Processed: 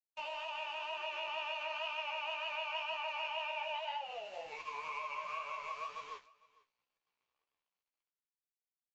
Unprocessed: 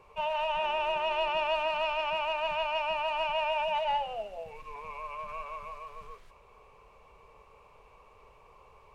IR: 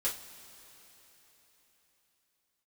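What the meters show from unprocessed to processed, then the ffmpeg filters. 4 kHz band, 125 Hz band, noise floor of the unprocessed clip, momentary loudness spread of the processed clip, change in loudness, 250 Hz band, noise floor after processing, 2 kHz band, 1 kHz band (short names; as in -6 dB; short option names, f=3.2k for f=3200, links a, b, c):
-5.5 dB, under -15 dB, -58 dBFS, 7 LU, -8.5 dB, under -15 dB, under -85 dBFS, -5.0 dB, -9.5 dB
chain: -filter_complex "[0:a]dynaudnorm=f=370:g=9:m=9.5dB,highpass=f=1.1k:p=1,aeval=exprs='sgn(val(0))*max(abs(val(0))-0.00299,0)':c=same,asplit=2[a][b];[b]adelay=16,volume=-7dB[c];[a][c]amix=inputs=2:normalize=0,agate=range=-23dB:threshold=-56dB:ratio=16:detection=peak,acompressor=threshold=-36dB:ratio=6,aresample=16000,aresample=44100,flanger=delay=8.1:depth=9.3:regen=32:speed=2:shape=triangular,highshelf=f=2.1k:g=11,flanger=delay=6:depth=7.6:regen=-65:speed=1:shape=sinusoidal,highshelf=f=4.6k:g=-12,aecho=1:1:453:0.0708,volume=3.5dB"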